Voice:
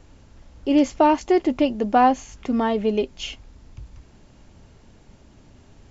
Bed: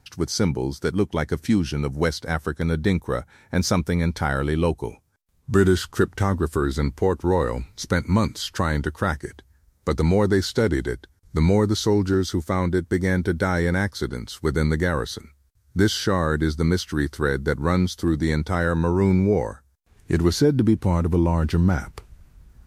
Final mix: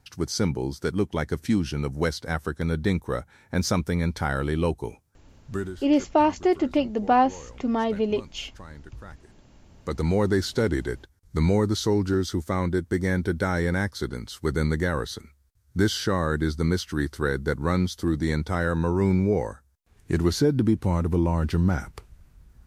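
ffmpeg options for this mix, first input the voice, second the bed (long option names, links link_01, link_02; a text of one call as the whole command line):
ffmpeg -i stem1.wav -i stem2.wav -filter_complex "[0:a]adelay=5150,volume=-3dB[link_01];[1:a]volume=15.5dB,afade=type=out:start_time=5.09:duration=0.66:silence=0.11885,afade=type=in:start_time=9.45:duration=0.77:silence=0.11885[link_02];[link_01][link_02]amix=inputs=2:normalize=0" out.wav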